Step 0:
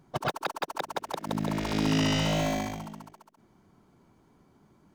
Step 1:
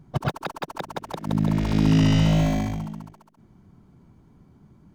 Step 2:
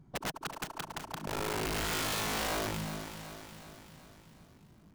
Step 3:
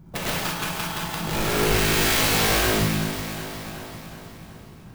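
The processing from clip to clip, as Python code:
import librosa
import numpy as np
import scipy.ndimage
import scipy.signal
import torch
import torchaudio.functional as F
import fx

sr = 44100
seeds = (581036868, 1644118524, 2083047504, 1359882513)

y1 = fx.bass_treble(x, sr, bass_db=13, treble_db=-2)
y2 = (np.mod(10.0 ** (20.5 / 20.0) * y1 + 1.0, 2.0) - 1.0) / 10.0 ** (20.5 / 20.0)
y2 = fx.echo_feedback(y2, sr, ms=373, feedback_pct=55, wet_db=-11.0)
y2 = 10.0 ** (-19.5 / 20.0) * np.tanh(y2 / 10.0 ** (-19.5 / 20.0))
y2 = y2 * 10.0 ** (-7.0 / 20.0)
y3 = fx.dynamic_eq(y2, sr, hz=800.0, q=0.83, threshold_db=-51.0, ratio=4.0, max_db=-6)
y3 = fx.rev_gated(y3, sr, seeds[0], gate_ms=250, shape='flat', drr_db=-6.5)
y3 = fx.clock_jitter(y3, sr, seeds[1], jitter_ms=0.027)
y3 = y3 * 10.0 ** (8.0 / 20.0)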